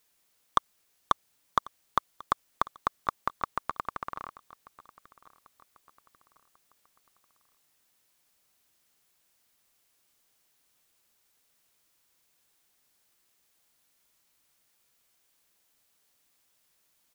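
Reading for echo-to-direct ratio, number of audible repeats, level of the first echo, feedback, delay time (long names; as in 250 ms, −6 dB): −21.0 dB, 2, −22.0 dB, 42%, 1,093 ms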